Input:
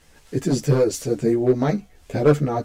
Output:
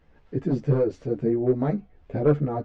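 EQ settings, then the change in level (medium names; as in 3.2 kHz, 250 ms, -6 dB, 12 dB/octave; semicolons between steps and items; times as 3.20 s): tape spacing loss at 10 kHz 42 dB; -2.5 dB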